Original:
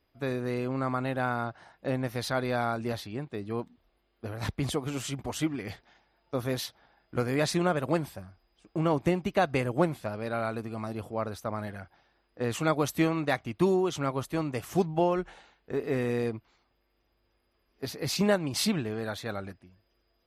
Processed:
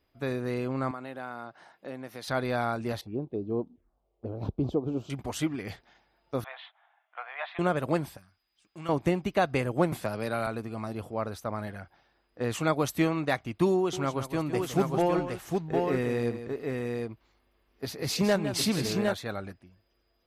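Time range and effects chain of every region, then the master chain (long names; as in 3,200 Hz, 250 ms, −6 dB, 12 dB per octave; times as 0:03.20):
0:00.91–0:02.28: high-pass filter 200 Hz + downward compressor 1.5 to 1, threshold −49 dBFS
0:03.01–0:05.10: drawn EQ curve 160 Hz 0 dB, 370 Hz +6 dB, 5,600 Hz −19 dB + phaser swept by the level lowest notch 230 Hz, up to 1,900 Hz, full sweep at −31 dBFS
0:06.44–0:07.59: Chebyshev band-pass filter 690–3,500 Hz, order 4 + high-frequency loss of the air 200 metres
0:08.17–0:08.89: high-pass filter 400 Hz 6 dB per octave + parametric band 510 Hz −15 dB 2.4 octaves
0:09.92–0:10.47: high-shelf EQ 4,900 Hz +10.5 dB + multiband upward and downward compressor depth 70%
0:13.77–0:19.14: hard clipping −17 dBFS + multi-tap delay 159/760 ms −10.5/−3.5 dB
whole clip: no processing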